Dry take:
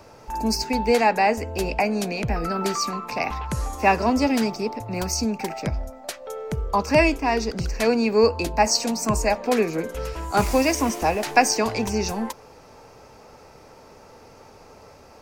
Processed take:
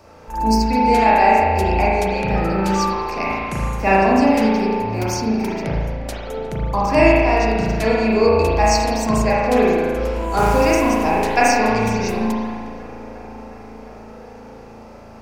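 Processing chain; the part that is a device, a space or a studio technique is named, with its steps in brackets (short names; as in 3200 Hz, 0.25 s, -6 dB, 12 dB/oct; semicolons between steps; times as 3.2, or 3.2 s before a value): dub delay into a spring reverb (darkening echo 0.357 s, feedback 83%, low-pass 3600 Hz, level -20 dB; spring tank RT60 1.6 s, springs 36 ms, chirp 50 ms, DRR -6 dB); 4.4–6.07 notch 7700 Hz, Q 8.9; gain -2 dB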